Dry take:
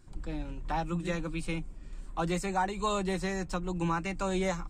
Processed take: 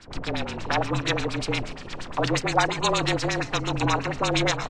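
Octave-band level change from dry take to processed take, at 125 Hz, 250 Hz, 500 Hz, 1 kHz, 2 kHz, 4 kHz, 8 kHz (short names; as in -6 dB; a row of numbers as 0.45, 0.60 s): +7.0, +4.5, +6.5, +7.5, +11.0, +15.5, +10.5 dB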